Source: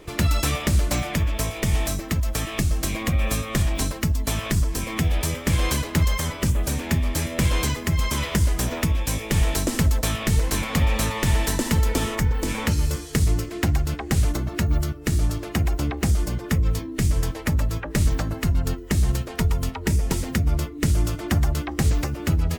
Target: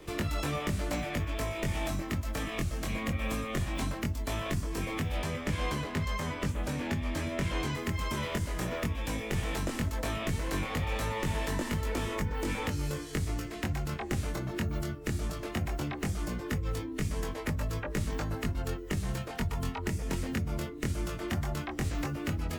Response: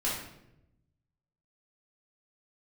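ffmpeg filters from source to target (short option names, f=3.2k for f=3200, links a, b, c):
-filter_complex "[0:a]asettb=1/sr,asplit=3[a][b][c];[a]atrim=end=5.214[d];[b]atrim=start=5.21:end=7.75,asetpts=PTS-STARTPTS,afade=t=in:d=0.004:c=qsin,afade=t=out:st=2.536:d=0.004:c=qsin,lowpass=f=3.9k:p=1[e];[c]atrim=start=7.746[f];[d][e]acrossfade=d=0.004:c1=hsin:c2=qsin[g];[g][f]acrossfade=d=0.004:c1=qsin:c2=hsin,acrossover=split=130|980|3000[h][i][j][k];[h]acompressor=threshold=-33dB:ratio=4[l];[i]acompressor=threshold=-30dB:ratio=4[m];[j]acompressor=threshold=-36dB:ratio=4[n];[k]acompressor=threshold=-43dB:ratio=4[o];[l][m][n][o]amix=inputs=4:normalize=0,flanger=delay=20:depth=2.4:speed=0.17"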